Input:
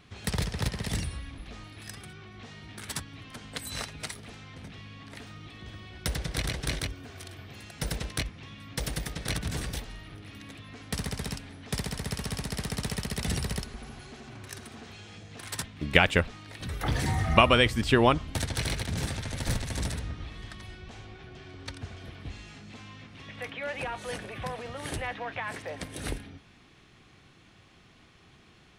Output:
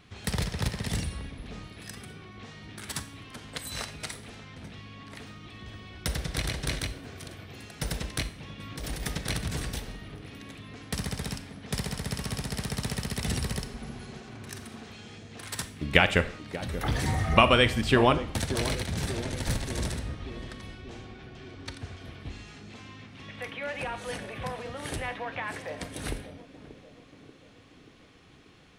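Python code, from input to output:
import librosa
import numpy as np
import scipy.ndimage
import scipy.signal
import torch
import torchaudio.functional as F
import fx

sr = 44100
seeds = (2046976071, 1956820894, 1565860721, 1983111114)

p1 = fx.over_compress(x, sr, threshold_db=-34.0, ratio=-0.5, at=(8.59, 9.17), fade=0.02)
p2 = p1 + fx.echo_banded(p1, sr, ms=584, feedback_pct=68, hz=310.0, wet_db=-10, dry=0)
y = fx.rev_schroeder(p2, sr, rt60_s=0.52, comb_ms=28, drr_db=11.5)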